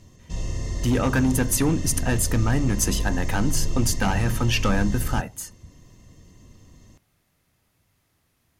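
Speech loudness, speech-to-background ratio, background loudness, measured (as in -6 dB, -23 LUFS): -24.0 LUFS, 7.0 dB, -31.0 LUFS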